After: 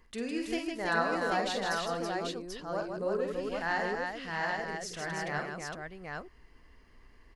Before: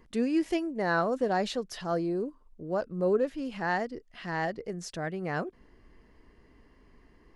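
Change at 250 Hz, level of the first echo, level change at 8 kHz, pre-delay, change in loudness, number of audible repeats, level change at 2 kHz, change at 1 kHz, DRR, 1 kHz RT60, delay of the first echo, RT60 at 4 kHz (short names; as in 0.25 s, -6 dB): -6.0 dB, -6.0 dB, +3.5 dB, none, -2.5 dB, 4, +2.5 dB, 0.0 dB, none, none, 48 ms, none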